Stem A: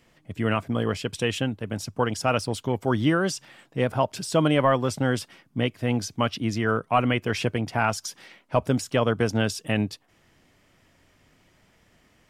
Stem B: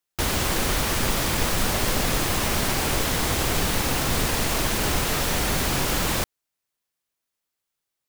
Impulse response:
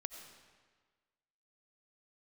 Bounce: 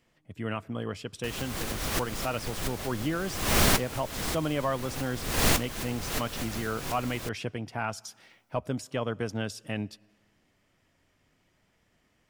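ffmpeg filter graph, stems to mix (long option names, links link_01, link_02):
-filter_complex "[0:a]volume=-9.5dB,asplit=3[link_01][link_02][link_03];[link_02]volume=-17dB[link_04];[1:a]bandreject=frequency=900:width=18,adelay=1050,volume=2.5dB[link_05];[link_03]apad=whole_len=402888[link_06];[link_05][link_06]sidechaincompress=threshold=-49dB:ratio=10:attack=16:release=222[link_07];[2:a]atrim=start_sample=2205[link_08];[link_04][link_08]afir=irnorm=-1:irlink=0[link_09];[link_01][link_07][link_09]amix=inputs=3:normalize=0"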